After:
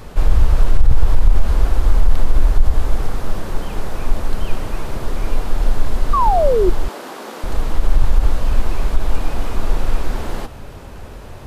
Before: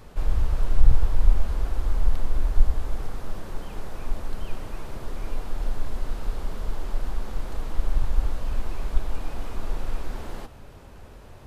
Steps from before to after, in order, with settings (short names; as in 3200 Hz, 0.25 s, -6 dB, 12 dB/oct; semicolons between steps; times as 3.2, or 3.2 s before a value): 6.13–6.7 painted sound fall 340–1200 Hz -26 dBFS; 6.88–7.44 HPF 260 Hz 24 dB/oct; maximiser +12 dB; gain -1 dB